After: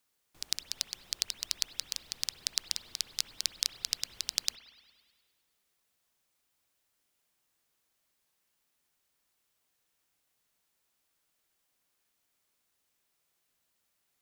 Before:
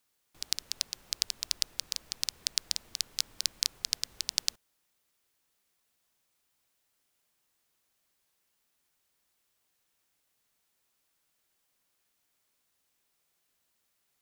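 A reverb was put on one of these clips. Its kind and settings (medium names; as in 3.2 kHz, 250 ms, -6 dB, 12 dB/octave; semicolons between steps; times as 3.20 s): spring tank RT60 1.7 s, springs 58 ms, chirp 45 ms, DRR 10.5 dB; trim -1.5 dB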